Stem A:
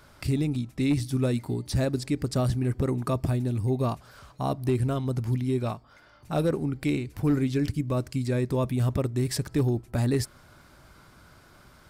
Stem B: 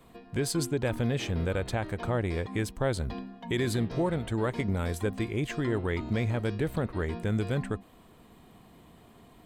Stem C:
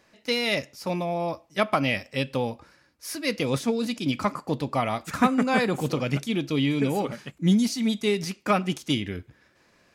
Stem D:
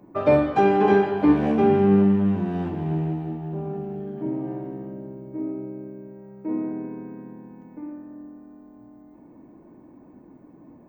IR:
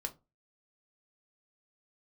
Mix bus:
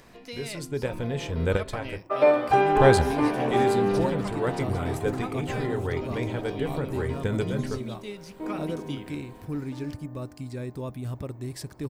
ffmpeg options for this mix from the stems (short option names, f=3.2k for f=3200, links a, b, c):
-filter_complex "[0:a]adelay=2250,volume=-8.5dB[a];[1:a]dynaudnorm=f=610:g=3:m=7dB,volume=0.5dB,asplit=3[b][c][d];[b]atrim=end=1.98,asetpts=PTS-STARTPTS,afade=t=out:st=1.976:d=0.004:c=hsin[e];[c]atrim=start=1.98:end=2.72,asetpts=PTS-STARTPTS,volume=0[f];[d]atrim=start=2.72,asetpts=PTS-STARTPTS,afade=t=in:d=0.004:c=hsin[g];[e][f][g]concat=n=3:v=0:a=1,asplit=2[h][i];[i]volume=-11dB[j];[2:a]acompressor=mode=upward:threshold=-28dB:ratio=2.5,volume=-14.5dB,asplit=2[k][l];[3:a]highpass=470,adelay=1950,volume=1dB[m];[l]apad=whole_len=416757[n];[h][n]sidechaincompress=threshold=-54dB:ratio=8:attack=10:release=266[o];[4:a]atrim=start_sample=2205[p];[j][p]afir=irnorm=-1:irlink=0[q];[a][o][k][m][q]amix=inputs=5:normalize=0"